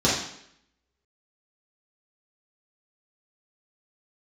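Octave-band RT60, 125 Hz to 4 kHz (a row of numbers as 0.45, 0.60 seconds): 0.65, 0.75, 0.75, 0.70, 0.75, 0.70 seconds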